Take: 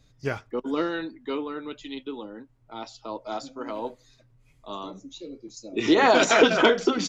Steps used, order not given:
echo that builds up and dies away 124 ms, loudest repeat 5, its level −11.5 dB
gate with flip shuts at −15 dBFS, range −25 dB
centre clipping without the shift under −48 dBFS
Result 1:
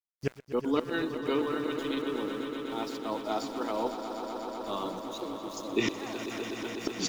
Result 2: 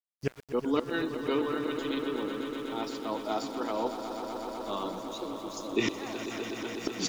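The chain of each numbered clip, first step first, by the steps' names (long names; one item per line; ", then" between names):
gate with flip, then centre clipping without the shift, then echo that builds up and dies away
gate with flip, then echo that builds up and dies away, then centre clipping without the shift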